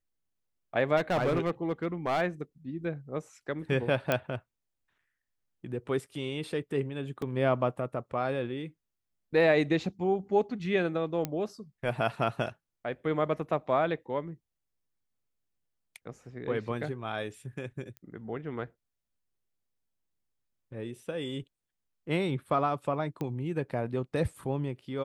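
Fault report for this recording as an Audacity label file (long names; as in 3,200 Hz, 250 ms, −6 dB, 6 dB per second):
0.960000	2.220000	clipping −23.5 dBFS
4.120000	4.120000	click −12 dBFS
7.220000	7.220000	drop-out 2.7 ms
11.250000	11.250000	click −16 dBFS
17.970000	17.970000	click −28 dBFS
23.210000	23.210000	click −23 dBFS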